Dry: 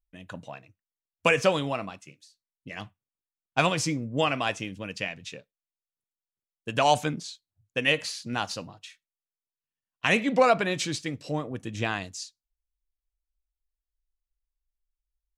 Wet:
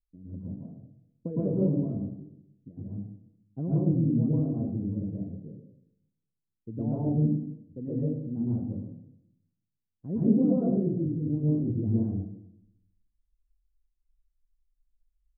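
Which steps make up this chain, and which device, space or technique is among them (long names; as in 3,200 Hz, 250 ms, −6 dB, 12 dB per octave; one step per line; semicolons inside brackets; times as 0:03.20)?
next room (low-pass filter 340 Hz 24 dB per octave; convolution reverb RT60 0.75 s, pre-delay 107 ms, DRR −7.5 dB)
level −2 dB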